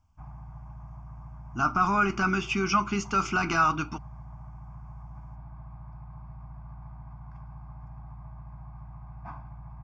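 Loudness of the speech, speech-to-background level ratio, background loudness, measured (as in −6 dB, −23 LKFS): −26.0 LKFS, 19.5 dB, −45.5 LKFS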